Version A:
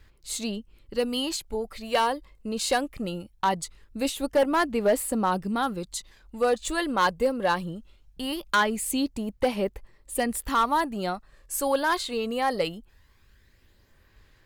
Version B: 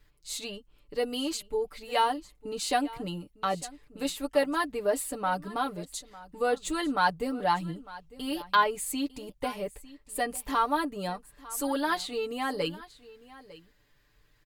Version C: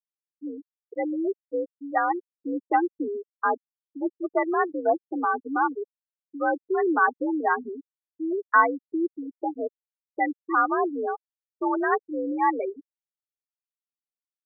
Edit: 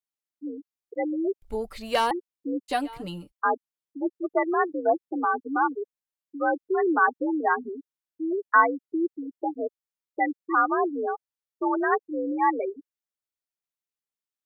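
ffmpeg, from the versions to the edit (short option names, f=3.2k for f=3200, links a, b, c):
-filter_complex "[2:a]asplit=3[a][b][c];[a]atrim=end=1.422[d];[0:a]atrim=start=1.418:end=2.112[e];[b]atrim=start=2.108:end=2.72[f];[1:a]atrim=start=2.68:end=3.33[g];[c]atrim=start=3.29[h];[d][e]acrossfade=d=0.004:c1=hsin:c2=hsin[i];[i][f]acrossfade=d=0.004:c1=hsin:c2=hsin[j];[j][g]acrossfade=d=0.04:c1=tri:c2=tri[k];[k][h]acrossfade=d=0.04:c1=tri:c2=tri"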